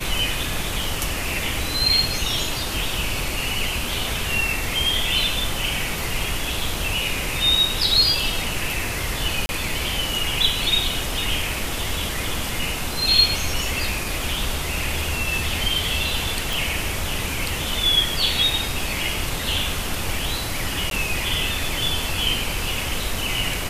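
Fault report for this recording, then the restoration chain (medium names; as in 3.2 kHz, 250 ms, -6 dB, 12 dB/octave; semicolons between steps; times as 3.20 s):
9.46–9.49 s: dropout 30 ms
16.53 s: pop
20.90–20.91 s: dropout 12 ms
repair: de-click; interpolate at 9.46 s, 30 ms; interpolate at 20.90 s, 12 ms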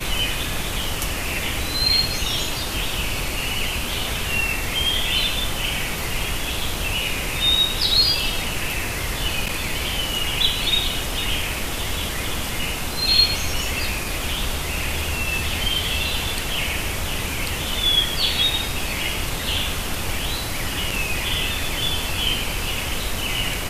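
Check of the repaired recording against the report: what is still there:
nothing left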